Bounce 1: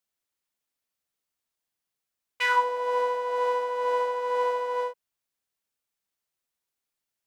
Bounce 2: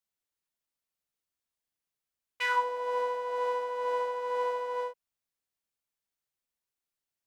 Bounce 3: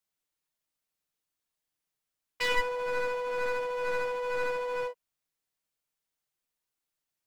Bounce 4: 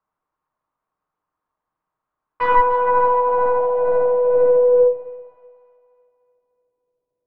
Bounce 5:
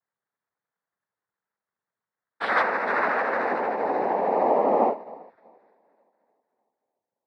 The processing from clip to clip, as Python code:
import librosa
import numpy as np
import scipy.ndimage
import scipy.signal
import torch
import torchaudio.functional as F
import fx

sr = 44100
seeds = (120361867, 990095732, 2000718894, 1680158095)

y1 = fx.low_shelf(x, sr, hz=130.0, db=5.0)
y1 = y1 * librosa.db_to_amplitude(-5.0)
y2 = np.minimum(y1, 2.0 * 10.0 ** (-31.5 / 20.0) - y1)
y2 = y2 + 0.31 * np.pad(y2, (int(6.5 * sr / 1000.0), 0))[:len(y2)]
y2 = y2 * librosa.db_to_amplitude(2.0)
y3 = fx.filter_sweep_lowpass(y2, sr, from_hz=1100.0, to_hz=490.0, start_s=2.57, end_s=4.97, q=3.8)
y3 = fx.echo_split(y3, sr, split_hz=810.0, low_ms=127, high_ms=298, feedback_pct=52, wet_db=-13)
y3 = y3 * librosa.db_to_amplitude(9.0)
y4 = fx.noise_vocoder(y3, sr, seeds[0], bands=6)
y4 = y4 * librosa.db_to_amplitude(-7.5)